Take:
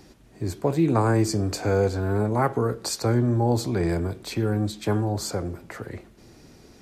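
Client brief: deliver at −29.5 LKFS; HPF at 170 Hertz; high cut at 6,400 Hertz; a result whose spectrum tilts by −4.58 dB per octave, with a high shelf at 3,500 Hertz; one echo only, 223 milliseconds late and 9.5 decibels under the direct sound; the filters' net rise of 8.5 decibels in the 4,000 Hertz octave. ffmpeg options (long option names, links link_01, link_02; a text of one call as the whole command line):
ffmpeg -i in.wav -af "highpass=170,lowpass=6400,highshelf=frequency=3500:gain=3.5,equalizer=frequency=4000:width_type=o:gain=8.5,aecho=1:1:223:0.335,volume=-4.5dB" out.wav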